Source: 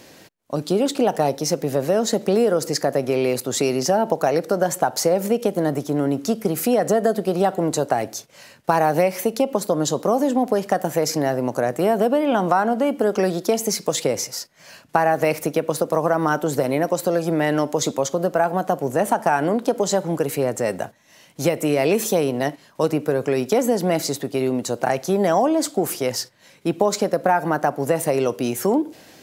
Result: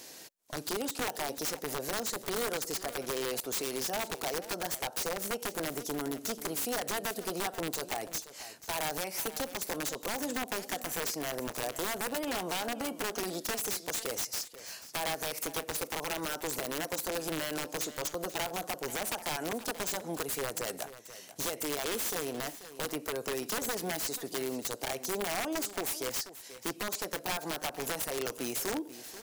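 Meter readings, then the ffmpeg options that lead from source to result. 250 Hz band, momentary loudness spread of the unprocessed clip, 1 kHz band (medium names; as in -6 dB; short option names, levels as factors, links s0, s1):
-17.5 dB, 5 LU, -15.5 dB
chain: -filter_complex "[0:a]bass=f=250:g=-9,treble=f=4000:g=10,bandreject=f=560:w=12,acompressor=threshold=0.0398:ratio=2.5,aeval=exprs='(mod(11.2*val(0)+1,2)-1)/11.2':c=same,asplit=2[s0][s1];[s1]aecho=0:1:486:0.188[s2];[s0][s2]amix=inputs=2:normalize=0,volume=0.501"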